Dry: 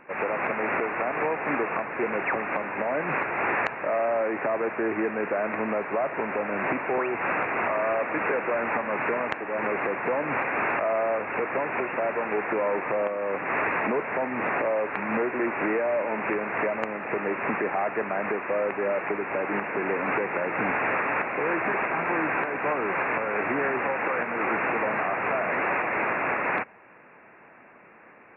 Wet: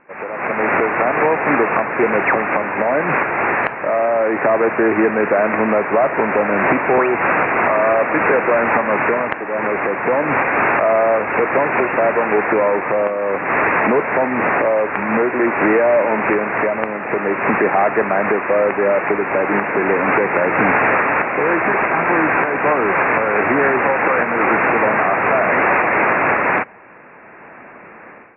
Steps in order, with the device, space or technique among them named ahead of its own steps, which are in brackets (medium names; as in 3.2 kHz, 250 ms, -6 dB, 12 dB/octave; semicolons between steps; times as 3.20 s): action camera in a waterproof case (low-pass 2.6 kHz 24 dB/octave; level rider gain up to 14.5 dB; trim -1 dB; AAC 48 kbps 24 kHz)